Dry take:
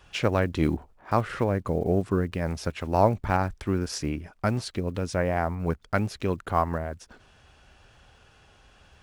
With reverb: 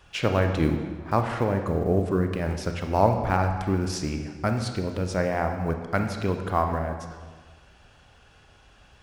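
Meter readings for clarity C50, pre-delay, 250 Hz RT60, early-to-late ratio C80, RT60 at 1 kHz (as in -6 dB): 6.5 dB, 26 ms, 1.6 s, 8.0 dB, 1.5 s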